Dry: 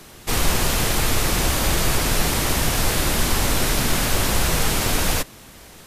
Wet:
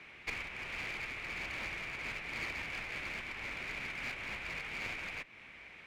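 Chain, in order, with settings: tilt EQ -4.5 dB/octave; compression 6:1, threshold -7 dBFS, peak gain reduction 16 dB; band-pass filter 2.3 kHz, Q 6.5; one-sided clip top -48.5 dBFS; trim +10 dB

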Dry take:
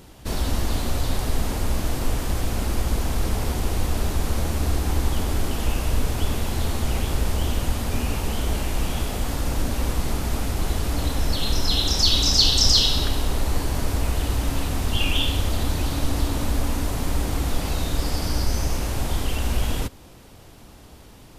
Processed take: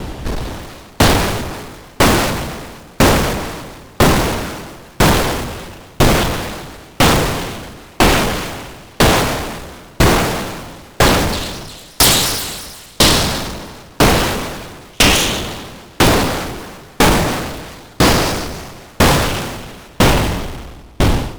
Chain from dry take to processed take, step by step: modulation noise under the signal 15 dB; on a send at -6 dB: reverberation RT60 3.6 s, pre-delay 39 ms; on the sum: compression 5:1, threshold -27 dBFS, peak gain reduction 14.5 dB; low-pass 2.6 kHz 6 dB/octave; in parallel at -7 dB: saturation -36.5 dBFS, distortion -7 dB; on the sum: level rider gain up to 16 dB; sine folder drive 17 dB, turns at -3 dBFS; sawtooth tremolo in dB decaying 1 Hz, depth 36 dB; trim -1 dB

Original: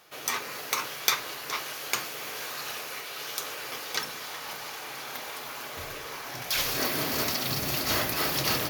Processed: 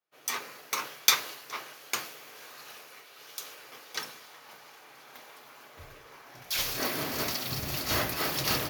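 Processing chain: three bands expanded up and down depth 100%; trim -4 dB

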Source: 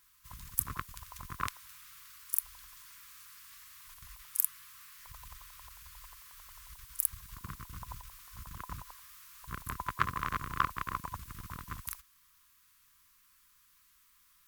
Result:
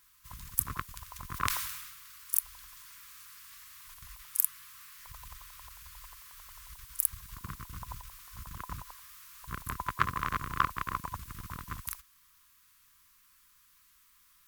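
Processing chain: 1.29–2.40 s: decay stretcher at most 44 dB/s; trim +2 dB

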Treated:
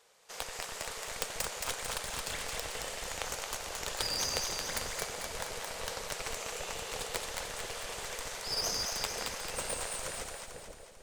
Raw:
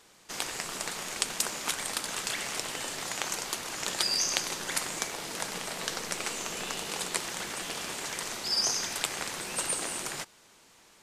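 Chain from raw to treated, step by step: tracing distortion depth 0.092 ms; resonant low shelf 380 Hz -7 dB, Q 3; in parallel at -4 dB: Schmitt trigger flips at -24.5 dBFS; on the sum: two-band feedback delay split 630 Hz, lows 488 ms, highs 222 ms, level -3.5 dB; trim -7 dB

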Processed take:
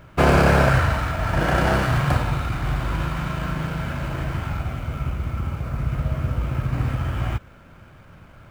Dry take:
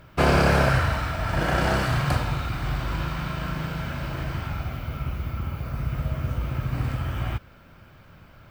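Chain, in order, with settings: median filter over 9 samples; trim +3.5 dB

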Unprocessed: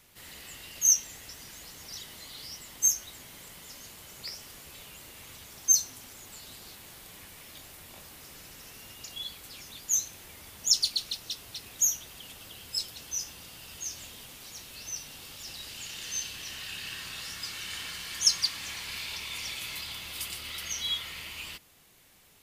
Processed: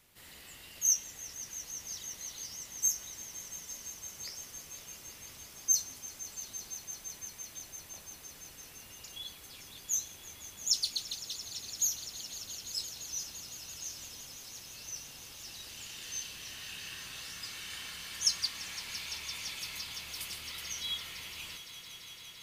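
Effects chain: echo with a slow build-up 170 ms, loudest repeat 5, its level -16 dB; trim -5.5 dB

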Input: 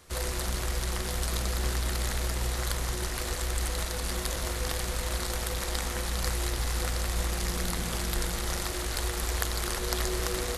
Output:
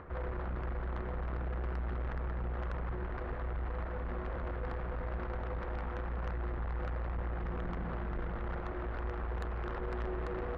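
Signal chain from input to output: low-pass 1.6 kHz 24 dB/octave; upward compressor, threshold -39 dBFS; valve stage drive 31 dB, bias 0.25; trim -1 dB

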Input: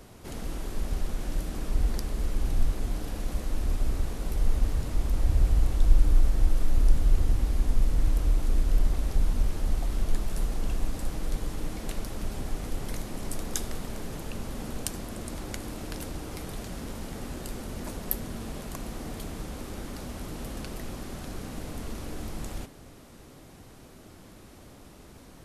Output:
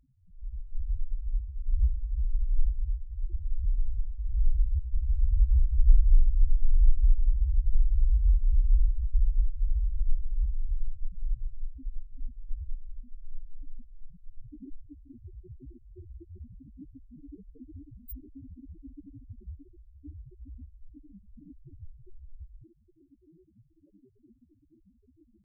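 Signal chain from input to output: pitch shift +3 st; loudest bins only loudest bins 2; spectral noise reduction 12 dB; trim +2 dB

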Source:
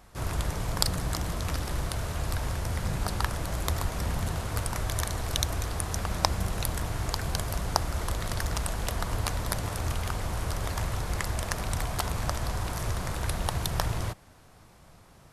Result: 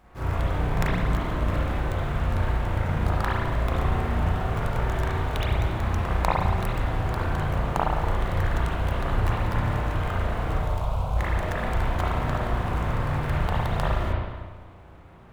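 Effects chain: median filter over 9 samples; 10.56–11.17 s: static phaser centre 760 Hz, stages 4; spring tank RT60 1.3 s, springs 34/55 ms, chirp 40 ms, DRR -7.5 dB; trim -2 dB

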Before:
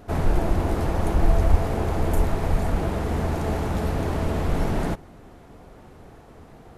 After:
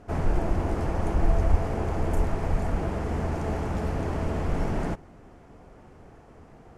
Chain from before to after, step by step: low-pass 8.1 kHz 12 dB/octave; peaking EQ 3.8 kHz -7.5 dB 0.45 oct; trim -3.5 dB

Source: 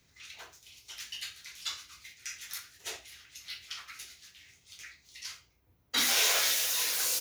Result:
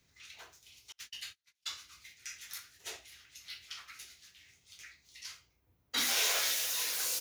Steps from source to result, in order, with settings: 0.92–1.68 s: gate -43 dBFS, range -35 dB; trim -4 dB

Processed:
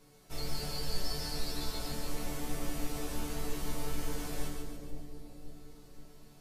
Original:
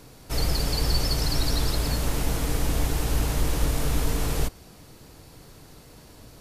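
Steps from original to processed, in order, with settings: chord resonator D3 major, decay 0.29 s; two-band feedback delay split 640 Hz, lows 529 ms, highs 143 ms, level -5 dB; trim +2.5 dB

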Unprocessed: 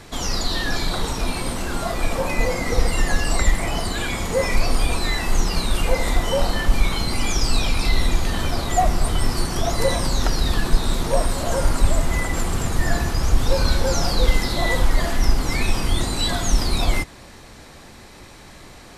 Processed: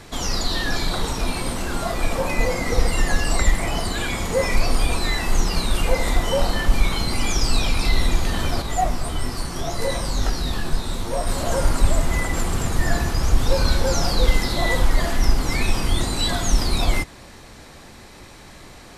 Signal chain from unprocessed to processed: 8.62–11.27 s: detune thickener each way 22 cents

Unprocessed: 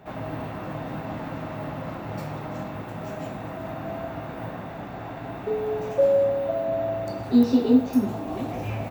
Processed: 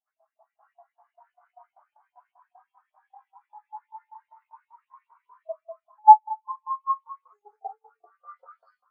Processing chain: pitch bend over the whole clip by +11 st starting unshifted; spring tank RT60 1.5 s, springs 56 ms, chirp 45 ms, DRR 7.5 dB; in parallel at +3 dB: compression, threshold -30 dBFS, peak gain reduction 16 dB; on the sum: LFO high-pass saw up 5.1 Hz 650–3700 Hz; pre-echo 36 ms -18 dB; level rider gain up to 5 dB; spectral contrast expander 2.5:1

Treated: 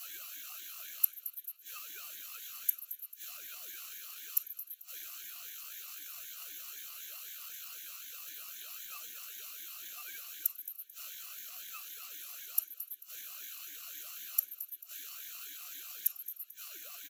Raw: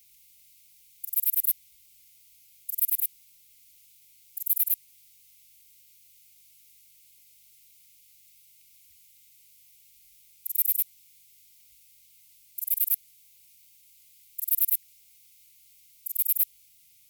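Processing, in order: every band turned upside down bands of 2 kHz; rippled EQ curve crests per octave 1.1, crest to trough 16 dB; compression 6:1, threshold -25 dBFS, peak gain reduction 11 dB; inverted gate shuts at -21 dBFS, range -25 dB; reverb removal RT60 0.83 s; feedback delay 220 ms, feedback 40%, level -14.5 dB; reverberation RT60 0.45 s, pre-delay 6 ms, DRR -6 dB; ring modulator with a swept carrier 520 Hz, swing 45%, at 3.9 Hz; trim +12 dB

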